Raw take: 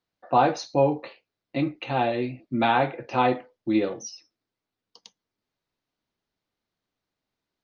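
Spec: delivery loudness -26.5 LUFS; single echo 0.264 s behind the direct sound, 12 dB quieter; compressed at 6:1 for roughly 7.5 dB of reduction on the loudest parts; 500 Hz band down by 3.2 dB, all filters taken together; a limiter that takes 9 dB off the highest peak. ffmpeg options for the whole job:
-af "equalizer=f=500:t=o:g=-4,acompressor=threshold=-25dB:ratio=6,alimiter=level_in=1.5dB:limit=-24dB:level=0:latency=1,volume=-1.5dB,aecho=1:1:264:0.251,volume=10dB"

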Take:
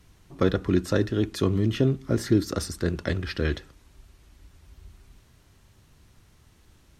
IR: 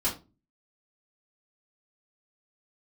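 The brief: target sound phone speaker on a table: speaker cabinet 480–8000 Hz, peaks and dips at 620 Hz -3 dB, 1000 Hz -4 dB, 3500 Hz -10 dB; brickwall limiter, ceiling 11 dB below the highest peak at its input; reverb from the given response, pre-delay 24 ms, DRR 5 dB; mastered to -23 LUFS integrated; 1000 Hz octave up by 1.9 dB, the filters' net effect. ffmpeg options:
-filter_complex "[0:a]equalizer=f=1k:t=o:g=5,alimiter=limit=-18.5dB:level=0:latency=1,asplit=2[a][b];[1:a]atrim=start_sample=2205,adelay=24[c];[b][c]afir=irnorm=-1:irlink=0,volume=-13dB[d];[a][d]amix=inputs=2:normalize=0,highpass=f=480:w=0.5412,highpass=f=480:w=1.3066,equalizer=f=620:t=q:w=4:g=-3,equalizer=f=1k:t=q:w=4:g=-4,equalizer=f=3.5k:t=q:w=4:g=-10,lowpass=f=8k:w=0.5412,lowpass=f=8k:w=1.3066,volume=14dB"

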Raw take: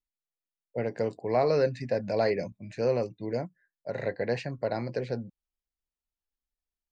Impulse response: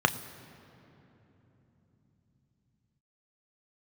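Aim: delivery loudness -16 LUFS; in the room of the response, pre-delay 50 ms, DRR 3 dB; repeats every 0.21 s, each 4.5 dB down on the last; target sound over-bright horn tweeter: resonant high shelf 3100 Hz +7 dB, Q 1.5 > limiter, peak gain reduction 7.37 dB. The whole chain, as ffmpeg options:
-filter_complex "[0:a]aecho=1:1:210|420|630|840|1050|1260|1470|1680|1890:0.596|0.357|0.214|0.129|0.0772|0.0463|0.0278|0.0167|0.01,asplit=2[a][b];[1:a]atrim=start_sample=2205,adelay=50[c];[b][c]afir=irnorm=-1:irlink=0,volume=-16.5dB[d];[a][d]amix=inputs=2:normalize=0,highshelf=f=3.1k:t=q:w=1.5:g=7,volume=13dB,alimiter=limit=-4dB:level=0:latency=1"

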